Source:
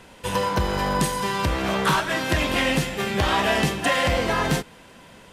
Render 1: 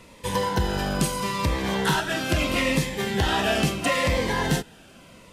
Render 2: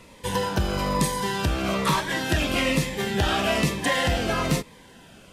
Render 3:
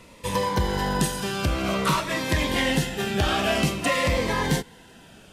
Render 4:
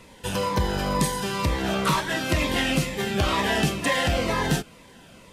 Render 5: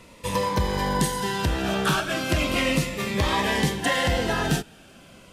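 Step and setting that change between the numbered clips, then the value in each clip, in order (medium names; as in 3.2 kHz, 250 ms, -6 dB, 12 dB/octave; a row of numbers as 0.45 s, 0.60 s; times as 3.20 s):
Shepard-style phaser, rate: 0.76 Hz, 1.1 Hz, 0.51 Hz, 2.1 Hz, 0.35 Hz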